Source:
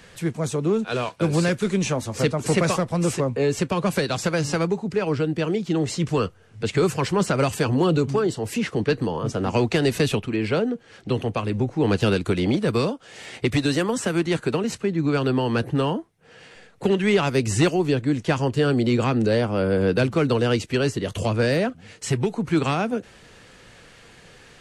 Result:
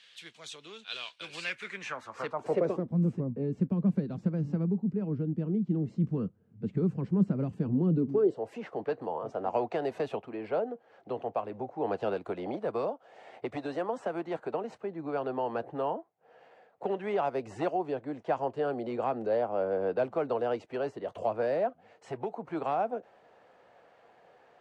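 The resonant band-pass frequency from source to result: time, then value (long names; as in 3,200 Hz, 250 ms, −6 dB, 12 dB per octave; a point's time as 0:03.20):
resonant band-pass, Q 2.8
0:01.20 3,400 Hz
0:02.32 1,000 Hz
0:02.95 200 Hz
0:07.93 200 Hz
0:08.49 710 Hz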